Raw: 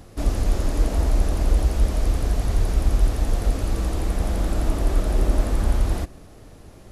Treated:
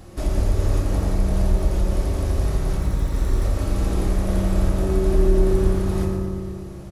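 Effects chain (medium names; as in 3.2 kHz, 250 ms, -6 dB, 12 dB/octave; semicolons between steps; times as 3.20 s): 2.78–3.44 s: comb filter that takes the minimum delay 0.52 ms; compression 3:1, threshold -22 dBFS, peak gain reduction 8 dB; feedback delay 116 ms, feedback 54%, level -9.5 dB; reverberation RT60 2.0 s, pre-delay 3 ms, DRR -1.5 dB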